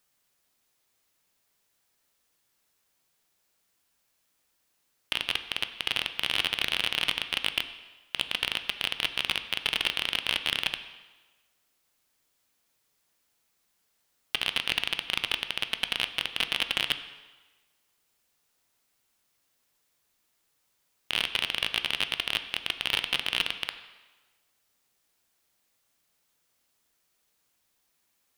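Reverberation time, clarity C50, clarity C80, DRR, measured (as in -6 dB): 1.2 s, 11.5 dB, 12.5 dB, 9.0 dB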